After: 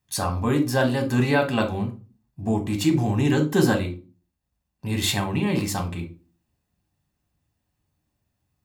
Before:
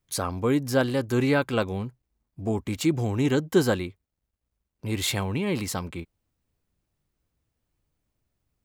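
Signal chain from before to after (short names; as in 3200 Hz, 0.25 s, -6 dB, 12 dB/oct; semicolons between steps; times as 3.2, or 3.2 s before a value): HPF 60 Hz; reverb RT60 0.35 s, pre-delay 3 ms, DRR 4 dB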